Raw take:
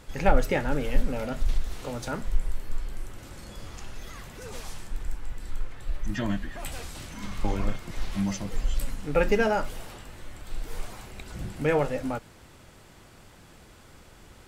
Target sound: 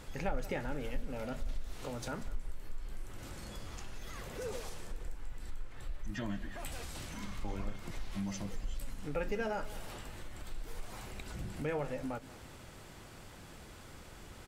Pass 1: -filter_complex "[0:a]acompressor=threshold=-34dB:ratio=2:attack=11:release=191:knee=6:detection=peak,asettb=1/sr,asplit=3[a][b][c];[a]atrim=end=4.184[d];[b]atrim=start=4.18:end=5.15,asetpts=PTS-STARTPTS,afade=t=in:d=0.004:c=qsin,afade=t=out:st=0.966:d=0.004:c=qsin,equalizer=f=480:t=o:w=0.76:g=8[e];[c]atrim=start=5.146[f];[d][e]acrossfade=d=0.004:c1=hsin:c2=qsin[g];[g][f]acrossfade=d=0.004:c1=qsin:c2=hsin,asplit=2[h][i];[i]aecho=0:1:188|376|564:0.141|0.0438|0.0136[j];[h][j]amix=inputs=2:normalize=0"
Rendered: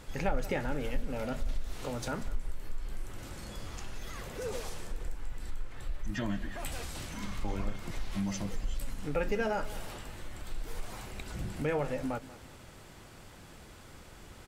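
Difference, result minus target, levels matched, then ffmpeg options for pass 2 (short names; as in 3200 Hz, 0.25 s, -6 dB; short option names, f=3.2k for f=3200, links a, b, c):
compressor: peak gain reduction -4.5 dB
-filter_complex "[0:a]acompressor=threshold=-43dB:ratio=2:attack=11:release=191:knee=6:detection=peak,asettb=1/sr,asplit=3[a][b][c];[a]atrim=end=4.184[d];[b]atrim=start=4.18:end=5.15,asetpts=PTS-STARTPTS,afade=t=in:d=0.004:c=qsin,afade=t=out:st=0.966:d=0.004:c=qsin,equalizer=f=480:t=o:w=0.76:g=8[e];[c]atrim=start=5.146[f];[d][e]acrossfade=d=0.004:c1=hsin:c2=qsin[g];[g][f]acrossfade=d=0.004:c1=qsin:c2=hsin,asplit=2[h][i];[i]aecho=0:1:188|376|564:0.141|0.0438|0.0136[j];[h][j]amix=inputs=2:normalize=0"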